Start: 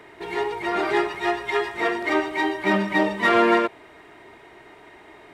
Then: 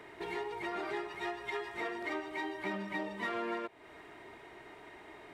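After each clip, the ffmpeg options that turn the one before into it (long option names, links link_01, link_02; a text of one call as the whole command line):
ffmpeg -i in.wav -af "acompressor=threshold=-32dB:ratio=4,volume=-5dB" out.wav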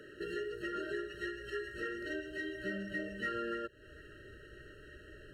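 ffmpeg -i in.wav -af "asubboost=boost=7:cutoff=94,afftfilt=real='re*eq(mod(floor(b*sr/1024/640),2),0)':imag='im*eq(mod(floor(b*sr/1024/640),2),0)':win_size=1024:overlap=0.75,volume=1.5dB" out.wav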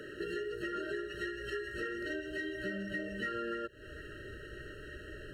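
ffmpeg -i in.wav -af "acompressor=threshold=-44dB:ratio=2.5,volume=6.5dB" out.wav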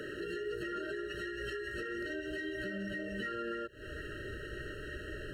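ffmpeg -i in.wav -af "alimiter=level_in=10.5dB:limit=-24dB:level=0:latency=1:release=173,volume=-10.5dB,volume=4dB" out.wav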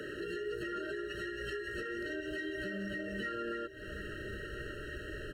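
ffmpeg -i in.wav -filter_complex "[0:a]acrossover=split=120[link_01][link_02];[link_01]acrusher=samples=31:mix=1:aa=0.000001[link_03];[link_03][link_02]amix=inputs=2:normalize=0,aecho=1:1:1165:0.211" out.wav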